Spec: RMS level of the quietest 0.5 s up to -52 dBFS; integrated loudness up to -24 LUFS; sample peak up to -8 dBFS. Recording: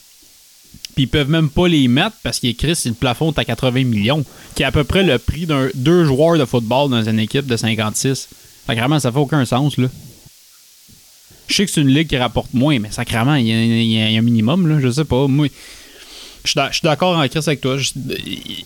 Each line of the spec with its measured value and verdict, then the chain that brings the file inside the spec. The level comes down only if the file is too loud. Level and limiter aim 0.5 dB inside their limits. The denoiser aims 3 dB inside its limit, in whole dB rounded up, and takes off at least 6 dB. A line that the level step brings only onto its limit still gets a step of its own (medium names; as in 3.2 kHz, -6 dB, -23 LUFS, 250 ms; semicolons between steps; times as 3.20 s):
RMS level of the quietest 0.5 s -47 dBFS: fail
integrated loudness -16.5 LUFS: fail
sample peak -4.5 dBFS: fail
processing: trim -8 dB